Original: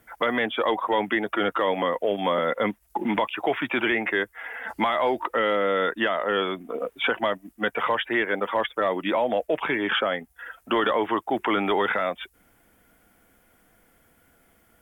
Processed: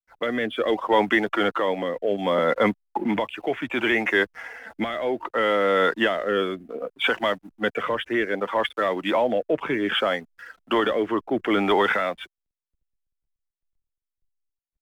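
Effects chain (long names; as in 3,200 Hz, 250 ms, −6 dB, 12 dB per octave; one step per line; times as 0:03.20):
slack as between gear wheels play −44 dBFS
rotating-speaker cabinet horn 0.65 Hz
multiband upward and downward expander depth 40%
level +4 dB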